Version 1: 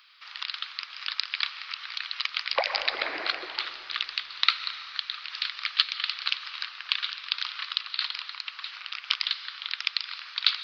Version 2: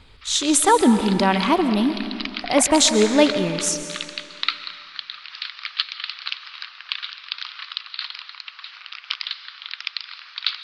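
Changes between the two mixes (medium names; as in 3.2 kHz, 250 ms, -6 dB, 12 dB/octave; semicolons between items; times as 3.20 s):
speech: unmuted; master: add treble shelf 10 kHz -6.5 dB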